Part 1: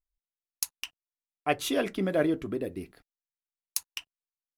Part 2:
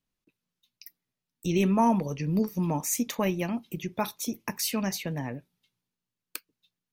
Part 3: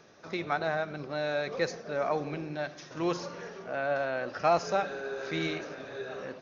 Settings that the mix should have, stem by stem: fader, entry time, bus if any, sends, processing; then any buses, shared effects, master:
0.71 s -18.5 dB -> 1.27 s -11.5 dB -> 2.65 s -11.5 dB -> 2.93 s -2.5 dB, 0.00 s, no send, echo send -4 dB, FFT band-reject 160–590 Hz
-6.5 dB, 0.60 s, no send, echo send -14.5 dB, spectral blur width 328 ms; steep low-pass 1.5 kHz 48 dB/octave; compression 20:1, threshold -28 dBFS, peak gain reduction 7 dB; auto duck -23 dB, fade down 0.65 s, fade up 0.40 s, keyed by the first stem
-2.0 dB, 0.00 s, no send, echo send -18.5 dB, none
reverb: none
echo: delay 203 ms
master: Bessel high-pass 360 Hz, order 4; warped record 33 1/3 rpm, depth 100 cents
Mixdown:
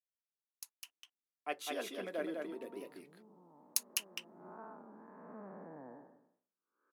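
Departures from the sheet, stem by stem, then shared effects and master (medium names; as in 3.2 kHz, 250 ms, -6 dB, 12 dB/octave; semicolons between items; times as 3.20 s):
stem 1: missing FFT band-reject 160–590 Hz; stem 3: muted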